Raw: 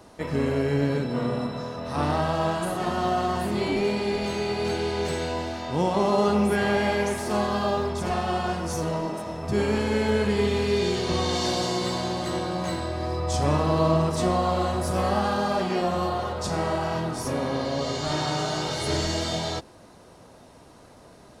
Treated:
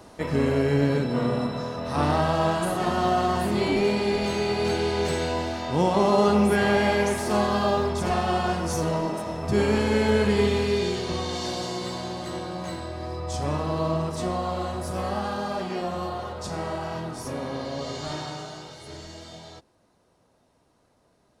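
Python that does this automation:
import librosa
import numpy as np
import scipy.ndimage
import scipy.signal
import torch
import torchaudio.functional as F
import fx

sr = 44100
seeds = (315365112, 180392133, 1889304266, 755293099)

y = fx.gain(x, sr, db=fx.line((10.41, 2.0), (11.27, -4.5), (18.06, -4.5), (18.79, -15.0)))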